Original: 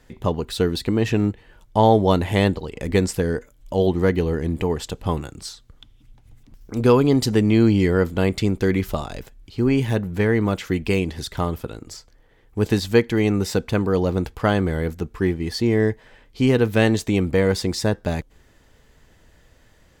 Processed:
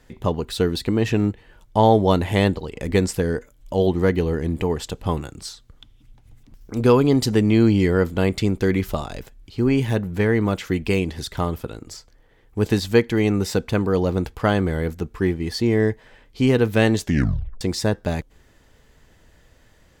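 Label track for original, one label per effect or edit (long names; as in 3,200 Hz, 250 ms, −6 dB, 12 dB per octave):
17.010000	17.010000	tape stop 0.60 s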